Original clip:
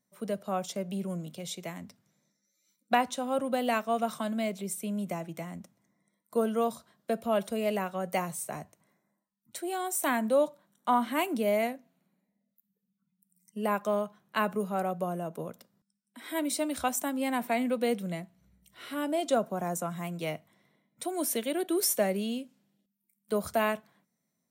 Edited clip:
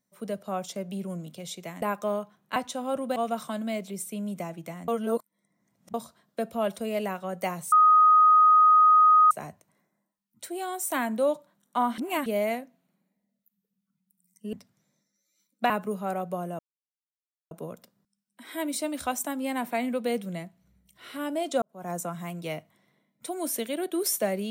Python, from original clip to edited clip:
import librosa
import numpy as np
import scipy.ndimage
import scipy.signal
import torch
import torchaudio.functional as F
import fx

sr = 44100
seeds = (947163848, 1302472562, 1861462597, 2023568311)

y = fx.edit(x, sr, fx.swap(start_s=1.82, length_s=1.17, other_s=13.65, other_length_s=0.74),
    fx.cut(start_s=3.59, length_s=0.28),
    fx.reverse_span(start_s=5.59, length_s=1.06),
    fx.insert_tone(at_s=8.43, length_s=1.59, hz=1250.0, db=-14.0),
    fx.reverse_span(start_s=11.1, length_s=0.28),
    fx.insert_silence(at_s=15.28, length_s=0.92),
    fx.fade_in_span(start_s=19.39, length_s=0.29, curve='qua'), tone=tone)